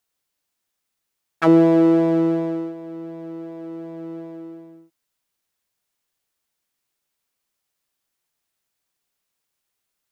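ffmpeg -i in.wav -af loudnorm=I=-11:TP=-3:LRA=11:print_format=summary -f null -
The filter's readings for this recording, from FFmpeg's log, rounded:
Input Integrated:    -17.4 LUFS
Input True Peak:      -5.1 dBTP
Input LRA:            21.9 LU
Input Threshold:     -31.3 LUFS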